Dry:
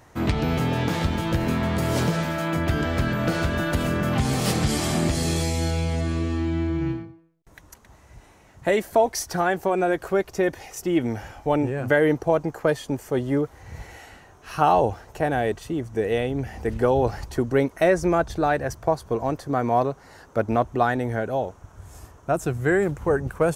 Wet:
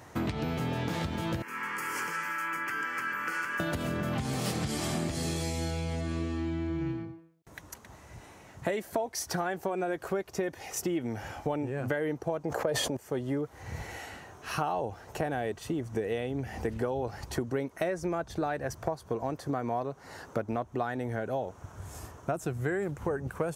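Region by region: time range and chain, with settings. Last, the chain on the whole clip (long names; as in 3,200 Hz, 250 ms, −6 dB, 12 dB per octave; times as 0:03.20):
0:01.42–0:03.60: high-pass filter 820 Hz + high-shelf EQ 5,200 Hz −5 dB + phaser with its sweep stopped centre 1,600 Hz, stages 4
0:12.45–0:12.97: parametric band 570 Hz +8.5 dB 0.88 octaves + level that may fall only so fast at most 26 dB per second
whole clip: downward compressor 6 to 1, threshold −31 dBFS; high-pass filter 77 Hz; level +2 dB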